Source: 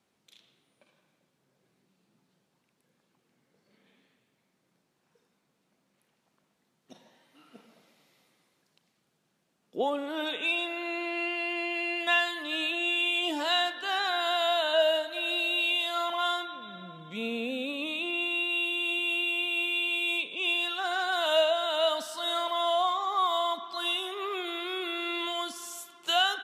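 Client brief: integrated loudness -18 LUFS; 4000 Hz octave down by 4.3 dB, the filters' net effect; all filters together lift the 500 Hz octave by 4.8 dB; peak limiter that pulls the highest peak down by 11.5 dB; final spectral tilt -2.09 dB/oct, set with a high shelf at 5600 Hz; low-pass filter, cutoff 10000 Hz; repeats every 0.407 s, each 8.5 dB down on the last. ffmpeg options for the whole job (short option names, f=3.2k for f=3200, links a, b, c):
-af "lowpass=10k,equalizer=f=500:t=o:g=7.5,equalizer=f=4k:t=o:g=-8,highshelf=f=5.6k:g=5.5,alimiter=limit=-22dB:level=0:latency=1,aecho=1:1:407|814|1221|1628:0.376|0.143|0.0543|0.0206,volume=12dB"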